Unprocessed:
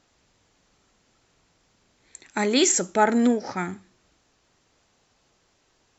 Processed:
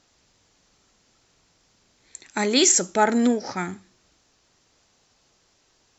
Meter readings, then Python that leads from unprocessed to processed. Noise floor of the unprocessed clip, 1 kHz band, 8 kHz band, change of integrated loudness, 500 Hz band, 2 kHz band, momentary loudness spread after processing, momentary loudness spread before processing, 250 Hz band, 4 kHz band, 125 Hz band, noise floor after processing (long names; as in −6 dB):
−67 dBFS, 0.0 dB, can't be measured, +1.5 dB, 0.0 dB, +0.5 dB, 16 LU, 13 LU, 0.0 dB, +3.5 dB, 0.0 dB, −65 dBFS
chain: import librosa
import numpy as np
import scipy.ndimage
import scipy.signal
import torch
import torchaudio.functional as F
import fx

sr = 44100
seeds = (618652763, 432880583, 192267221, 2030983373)

y = fx.peak_eq(x, sr, hz=5400.0, db=5.5, octaves=1.2)